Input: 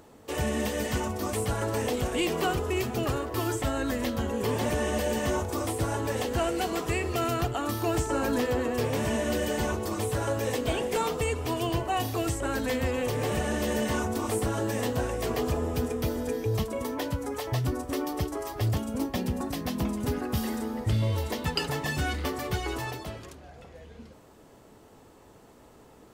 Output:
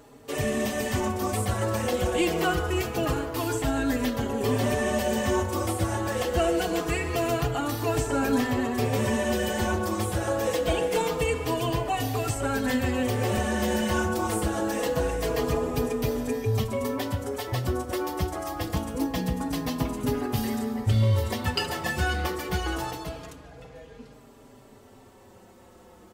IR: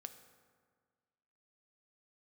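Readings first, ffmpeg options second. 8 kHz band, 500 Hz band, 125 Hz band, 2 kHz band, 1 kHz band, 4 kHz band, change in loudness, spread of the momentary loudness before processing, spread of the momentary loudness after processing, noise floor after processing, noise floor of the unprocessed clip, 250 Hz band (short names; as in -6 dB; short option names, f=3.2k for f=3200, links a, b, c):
+1.5 dB, +2.0 dB, +2.0 dB, +3.0 dB, +2.5 dB, +2.0 dB, +2.5 dB, 4 LU, 5 LU, -52 dBFS, -54 dBFS, +2.5 dB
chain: -filter_complex "[0:a]asplit=2[a][b];[b]adelay=140,highpass=300,lowpass=3.4k,asoftclip=type=hard:threshold=-23dB,volume=-11dB[c];[a][c]amix=inputs=2:normalize=0,asplit=2[d][e];[1:a]atrim=start_sample=2205[f];[e][f]afir=irnorm=-1:irlink=0,volume=12dB[g];[d][g]amix=inputs=2:normalize=0,asplit=2[h][i];[i]adelay=4.5,afreqshift=-0.25[j];[h][j]amix=inputs=2:normalize=1,volume=-5dB"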